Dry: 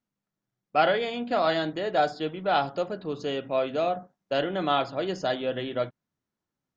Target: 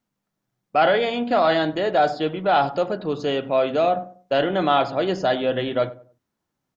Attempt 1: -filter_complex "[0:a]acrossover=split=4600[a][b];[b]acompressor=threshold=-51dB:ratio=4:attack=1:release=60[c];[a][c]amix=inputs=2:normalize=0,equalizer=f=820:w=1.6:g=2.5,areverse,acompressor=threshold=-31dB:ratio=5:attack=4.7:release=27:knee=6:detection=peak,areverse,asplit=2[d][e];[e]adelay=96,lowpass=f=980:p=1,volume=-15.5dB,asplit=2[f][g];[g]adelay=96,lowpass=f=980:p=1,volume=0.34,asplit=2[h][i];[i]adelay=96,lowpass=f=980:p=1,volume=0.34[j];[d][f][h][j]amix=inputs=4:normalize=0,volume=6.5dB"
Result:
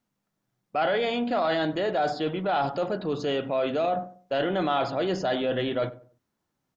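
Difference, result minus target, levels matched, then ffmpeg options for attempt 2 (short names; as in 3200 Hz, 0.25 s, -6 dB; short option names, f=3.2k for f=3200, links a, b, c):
compressor: peak gain reduction +8.5 dB
-filter_complex "[0:a]acrossover=split=4600[a][b];[b]acompressor=threshold=-51dB:ratio=4:attack=1:release=60[c];[a][c]amix=inputs=2:normalize=0,equalizer=f=820:w=1.6:g=2.5,areverse,acompressor=threshold=-20.5dB:ratio=5:attack=4.7:release=27:knee=6:detection=peak,areverse,asplit=2[d][e];[e]adelay=96,lowpass=f=980:p=1,volume=-15.5dB,asplit=2[f][g];[g]adelay=96,lowpass=f=980:p=1,volume=0.34,asplit=2[h][i];[i]adelay=96,lowpass=f=980:p=1,volume=0.34[j];[d][f][h][j]amix=inputs=4:normalize=0,volume=6.5dB"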